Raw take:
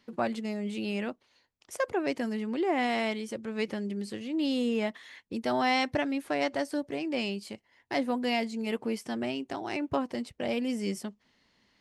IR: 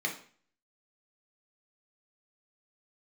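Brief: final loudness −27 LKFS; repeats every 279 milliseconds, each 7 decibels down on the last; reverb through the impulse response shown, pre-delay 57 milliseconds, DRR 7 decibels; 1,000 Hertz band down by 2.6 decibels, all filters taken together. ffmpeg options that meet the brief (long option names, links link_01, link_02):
-filter_complex "[0:a]equalizer=frequency=1000:width_type=o:gain=-4,aecho=1:1:279|558|837|1116|1395:0.447|0.201|0.0905|0.0407|0.0183,asplit=2[link_01][link_02];[1:a]atrim=start_sample=2205,adelay=57[link_03];[link_02][link_03]afir=irnorm=-1:irlink=0,volume=-13dB[link_04];[link_01][link_04]amix=inputs=2:normalize=0,volume=4dB"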